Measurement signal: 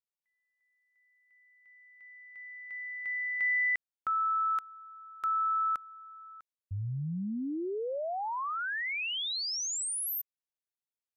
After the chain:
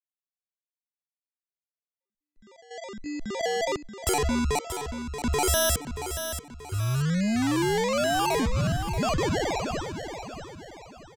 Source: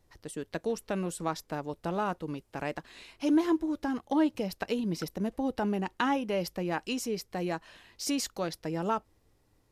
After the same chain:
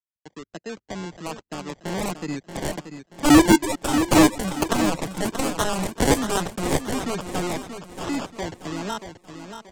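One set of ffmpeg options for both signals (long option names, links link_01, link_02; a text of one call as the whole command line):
ffmpeg -i in.wav -filter_complex "[0:a]anlmdn=0.398,highpass=140,agate=range=-31dB:threshold=-44dB:ratio=3:release=446:detection=peak,equalizer=frequency=500:width_type=o:width=0.33:gain=-6,equalizer=frequency=2000:width_type=o:width=0.33:gain=-12,equalizer=frequency=6300:width_type=o:width=0.33:gain=-7,dynaudnorm=framelen=330:gausssize=13:maxgain=15dB,aresample=16000,acrusher=samples=10:mix=1:aa=0.000001:lfo=1:lforange=6:lforate=1.2,aresample=44100,aeval=exprs='0.75*(cos(1*acos(clip(val(0)/0.75,-1,1)))-cos(1*PI/2))+0.0422*(cos(2*acos(clip(val(0)/0.75,-1,1)))-cos(2*PI/2))+0.211*(cos(7*acos(clip(val(0)/0.75,-1,1)))-cos(7*PI/2))':channel_layout=same,acrossover=split=200[link_01][link_02];[link_02]asoftclip=type=tanh:threshold=-6.5dB[link_03];[link_01][link_03]amix=inputs=2:normalize=0,aecho=1:1:631|1262|1893|2524:0.355|0.138|0.054|0.021" out.wav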